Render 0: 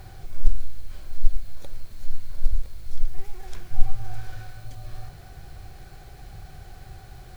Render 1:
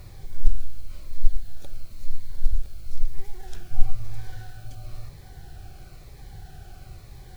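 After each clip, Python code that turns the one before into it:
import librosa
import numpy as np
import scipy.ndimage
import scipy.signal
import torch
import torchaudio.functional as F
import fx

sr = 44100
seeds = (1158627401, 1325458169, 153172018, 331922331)

y = fx.notch_cascade(x, sr, direction='falling', hz=1.0)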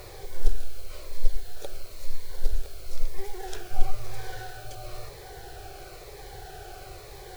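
y = fx.low_shelf_res(x, sr, hz=310.0, db=-10.5, q=3.0)
y = F.gain(torch.from_numpy(y), 7.0).numpy()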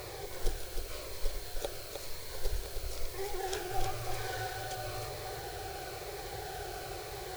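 y = fx.highpass(x, sr, hz=86.0, slope=6)
y = y + 10.0 ** (-6.0 / 20.0) * np.pad(y, (int(309 * sr / 1000.0), 0))[:len(y)]
y = F.gain(torch.from_numpy(y), 2.0).numpy()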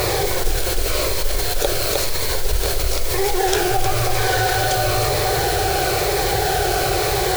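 y = fx.mod_noise(x, sr, seeds[0], snr_db=17)
y = fx.env_flatten(y, sr, amount_pct=70)
y = F.gain(torch.from_numpy(y), 9.0).numpy()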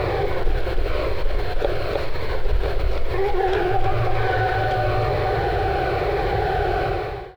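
y = fx.fade_out_tail(x, sr, length_s=0.53)
y = fx.air_absorb(y, sr, metres=440.0)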